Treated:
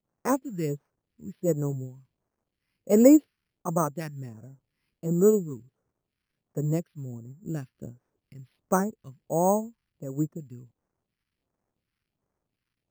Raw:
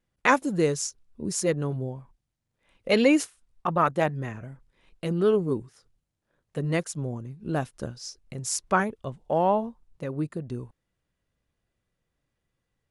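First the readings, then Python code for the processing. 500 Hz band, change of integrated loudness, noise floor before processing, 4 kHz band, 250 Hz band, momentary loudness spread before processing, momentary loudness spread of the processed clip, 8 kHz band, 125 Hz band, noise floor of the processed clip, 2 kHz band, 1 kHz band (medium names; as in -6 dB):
0.0 dB, +1.0 dB, -82 dBFS, under -15 dB, +2.5 dB, 16 LU, 21 LU, -4.5 dB, -0.5 dB, under -85 dBFS, -14.0 dB, -5.5 dB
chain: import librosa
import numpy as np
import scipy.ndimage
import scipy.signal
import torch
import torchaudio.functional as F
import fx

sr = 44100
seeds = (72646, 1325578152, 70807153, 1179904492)

y = scipy.signal.sosfilt(scipy.signal.butter(2, 110.0, 'highpass', fs=sr, output='sos'), x)
y = fx.dmg_crackle(y, sr, seeds[0], per_s=530.0, level_db=-51.0)
y = fx.phaser_stages(y, sr, stages=2, low_hz=600.0, high_hz=3100.0, hz=1.4, feedback_pct=40)
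y = fx.air_absorb(y, sr, metres=420.0)
y = np.repeat(scipy.signal.resample_poly(y, 1, 6), 6)[:len(y)]
y = fx.upward_expand(y, sr, threshold_db=-40.0, expansion=1.5)
y = y * 10.0 ** (5.0 / 20.0)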